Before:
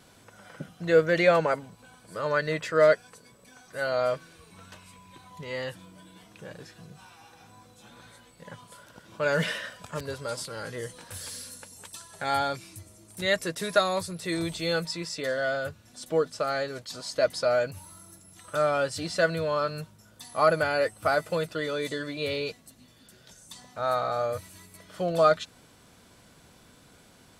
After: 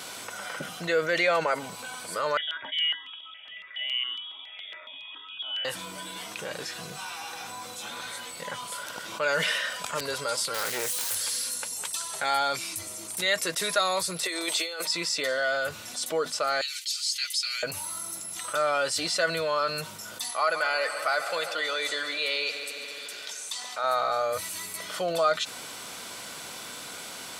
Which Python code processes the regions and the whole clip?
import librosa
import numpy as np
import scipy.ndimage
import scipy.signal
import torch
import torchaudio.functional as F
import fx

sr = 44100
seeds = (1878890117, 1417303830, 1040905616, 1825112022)

y = fx.chain(x, sr, fx.comb_fb(f0_hz=170.0, decay_s=0.22, harmonics='odd', damping=0.0, mix_pct=80),
    fx.freq_invert(carrier_hz=3500),
    fx.phaser_held(hz=7.2, low_hz=270.0, high_hz=2000.0), at=(2.37, 5.65))
y = fx.chain(y, sr, fx.crossing_spikes(level_db=-31.5),
    fx.doppler_dist(depth_ms=0.39), at=(10.54, 11.15))
y = fx.chain(y, sr, fx.highpass(hz=320.0, slope=24),
    fx.over_compress(threshold_db=-35.0, ratio=-0.5), at=(14.23, 14.87))
y = fx.chain(y, sr, fx.cheby2_highpass(hz=400.0, order=4, stop_db=80),
    fx.comb(ms=6.4, depth=0.55), at=(16.61, 17.63))
y = fx.chain(y, sr, fx.highpass(hz=830.0, slope=6),
    fx.high_shelf(hz=11000.0, db=-11.0),
    fx.echo_heads(ms=70, heads='second and third', feedback_pct=64, wet_db=-18.0), at=(20.31, 23.84))
y = fx.highpass(y, sr, hz=1100.0, slope=6)
y = fx.notch(y, sr, hz=1700.0, q=14.0)
y = fx.env_flatten(y, sr, amount_pct=50)